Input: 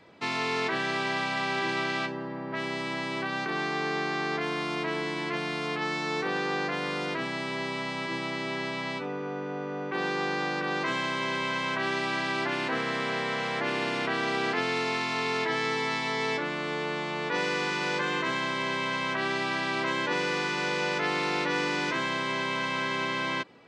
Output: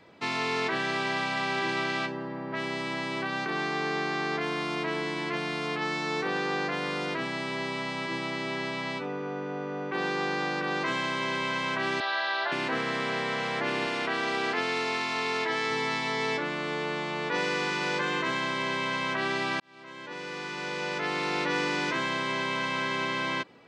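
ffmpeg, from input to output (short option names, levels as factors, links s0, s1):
-filter_complex "[0:a]asettb=1/sr,asplit=3[s0][s1][s2];[s0]atrim=end=12.004[s3];[s1]atrim=start=12:end=12.52,asetpts=PTS-STARTPTS,afade=t=in:d=0.004:c=qsin,afade=t=out:st=0.516:d=0.004:c=qsin,highpass=f=480:w=0.5412,highpass=f=480:w=1.3066,equalizer=f=480:t=q:w=4:g=-3,equalizer=f=690:t=q:w=4:g=5,equalizer=f=1600:t=q:w=4:g=5,equalizer=f=2300:t=q:w=4:g=-7,equalizer=f=3900:t=q:w=4:g=7,lowpass=f=4600:w=0.5412,lowpass=f=4600:w=1.3066[s4];[s2]atrim=start=12.516[s5];[s3][s4]acrossfade=d=0.004:c1=hsin:c2=qsin[s6];[s6][s5]acrossfade=d=0.004:c1=qsin:c2=hsin,asettb=1/sr,asplit=3[s7][s8][s9];[s7]atrim=end=13.864[s10];[s8]atrim=start=13.86:end=15.71,asetpts=PTS-STARTPTS,afade=t=in:d=0.004:c=qsin,afade=t=out:st=1.846:d=0.004:c=qsin,highpass=f=240:p=1[s11];[s9]atrim=start=15.706[s12];[s10][s11]acrossfade=d=0.004:c1=hsin:c2=qsin[s13];[s13][s12]acrossfade=d=0.004:c1=qsin:c2=hsin,asplit=2[s14][s15];[s14]atrim=end=19.6,asetpts=PTS-STARTPTS,afade=t=out:st=19.596:d=0.004:c=hsin[s16];[s15]atrim=start=19.6,asetpts=PTS-STARTPTS,afade=t=in:d=1.91[s17];[s16][s17]concat=n=2:v=0:a=1"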